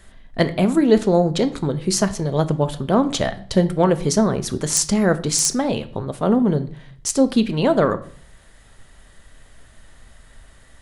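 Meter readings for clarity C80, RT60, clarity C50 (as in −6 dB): 19.5 dB, 0.55 s, 15.5 dB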